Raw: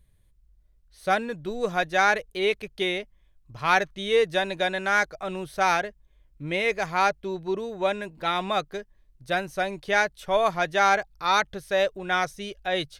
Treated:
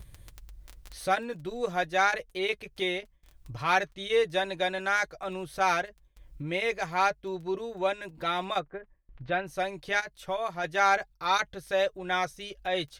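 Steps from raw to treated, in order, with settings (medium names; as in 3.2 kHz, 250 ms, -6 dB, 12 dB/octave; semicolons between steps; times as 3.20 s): crackle 10 per s -38 dBFS; upward compressor, threshold -29 dBFS; 8.58–9.45 s: low-pass 1.6 kHz -> 3.6 kHz 24 dB/octave; 9.99–10.64 s: compression 2.5:1, threshold -27 dBFS, peak gain reduction 7 dB; comb of notches 210 Hz; gate with hold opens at -45 dBFS; trim -2.5 dB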